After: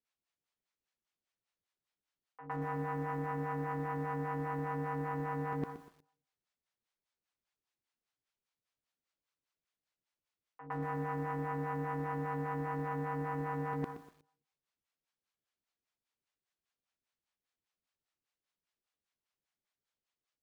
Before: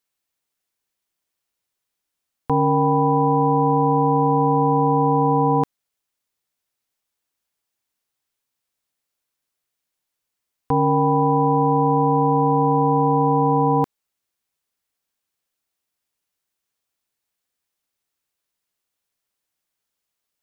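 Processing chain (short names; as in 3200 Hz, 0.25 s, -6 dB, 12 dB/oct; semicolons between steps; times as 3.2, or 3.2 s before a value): self-modulated delay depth 0.24 ms; on a send at -20.5 dB: reverb RT60 0.65 s, pre-delay 52 ms; on the sum: harmonic tremolo 5 Hz, depth 100%, crossover 550 Hz; reverse; compressor 8:1, threshold -32 dBFS, peak gain reduction 13 dB; reverse; air absorption 90 m; reverse echo 0.11 s -12 dB; lo-fi delay 0.122 s, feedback 35%, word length 9-bit, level -12 dB; gain -2.5 dB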